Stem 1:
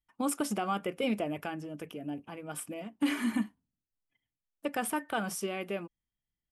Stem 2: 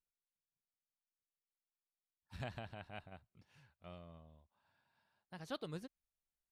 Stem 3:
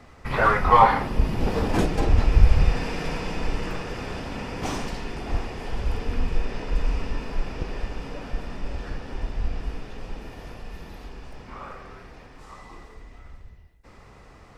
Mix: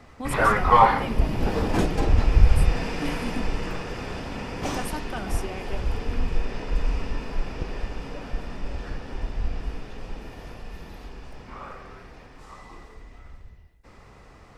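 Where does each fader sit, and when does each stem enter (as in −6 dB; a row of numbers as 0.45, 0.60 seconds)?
−2.5 dB, muted, −0.5 dB; 0.00 s, muted, 0.00 s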